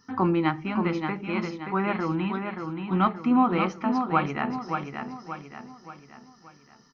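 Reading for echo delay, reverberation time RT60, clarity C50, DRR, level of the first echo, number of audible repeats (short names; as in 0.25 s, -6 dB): 0.578 s, none, none, none, -6.0 dB, 5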